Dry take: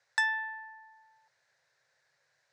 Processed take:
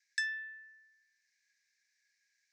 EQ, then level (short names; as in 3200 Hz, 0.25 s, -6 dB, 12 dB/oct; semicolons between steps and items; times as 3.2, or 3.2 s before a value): rippled Chebyshev high-pass 1600 Hz, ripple 9 dB; +1.5 dB